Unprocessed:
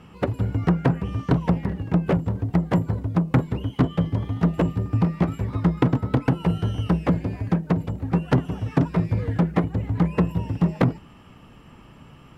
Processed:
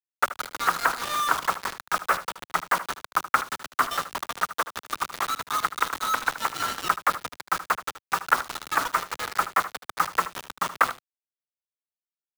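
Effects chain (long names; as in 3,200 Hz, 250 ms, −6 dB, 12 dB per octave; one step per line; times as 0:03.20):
low-pass filter 3,500 Hz 24 dB per octave
high-shelf EQ 2,200 Hz −9.5 dB
0:04.31–0:06.60: downward compressor 8 to 1, threshold −21 dBFS, peak gain reduction 8 dB
high-pass with resonance 1,300 Hz, resonance Q 4.2
bit-depth reduction 6 bits, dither none
single-tap delay 76 ms −14 dB
multiband upward and downward compressor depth 40%
level +6.5 dB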